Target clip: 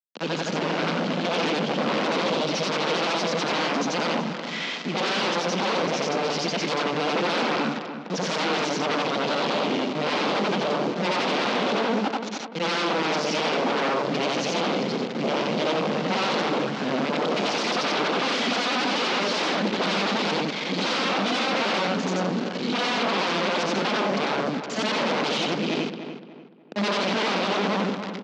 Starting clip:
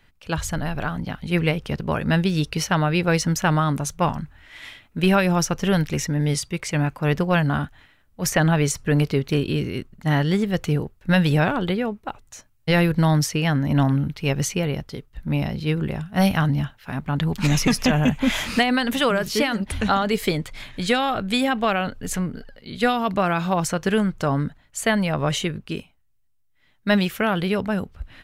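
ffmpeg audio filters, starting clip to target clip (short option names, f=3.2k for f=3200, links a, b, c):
-filter_complex "[0:a]afftfilt=real='re':imag='-im':win_size=8192:overlap=0.75,equalizer=f=260:t=o:w=0.27:g=4,asplit=2[a][b];[b]alimiter=limit=-18.5dB:level=0:latency=1:release=41,volume=-2dB[c];[a][c]amix=inputs=2:normalize=0,dynaudnorm=f=430:g=3:m=6dB,aresample=16000,acrusher=bits=5:mix=0:aa=0.000001,aresample=44100,aeval=exprs='0.1*(abs(mod(val(0)/0.1+3,4)-2)-1)':c=same,aeval=exprs='(tanh(31.6*val(0)+0.55)-tanh(0.55))/31.6':c=same,highpass=f=200:w=0.5412,highpass=f=200:w=1.3066,equalizer=f=210:t=q:w=4:g=4,equalizer=f=500:t=q:w=4:g=3,equalizer=f=1.8k:t=q:w=4:g=-4,lowpass=f=5k:w=0.5412,lowpass=f=5k:w=1.3066,asplit=2[d][e];[e]adelay=294,lowpass=f=2.3k:p=1,volume=-9dB,asplit=2[f][g];[g]adelay=294,lowpass=f=2.3k:p=1,volume=0.36,asplit=2[h][i];[i]adelay=294,lowpass=f=2.3k:p=1,volume=0.36,asplit=2[j][k];[k]adelay=294,lowpass=f=2.3k:p=1,volume=0.36[l];[d][f][h][j][l]amix=inputs=5:normalize=0,volume=8dB"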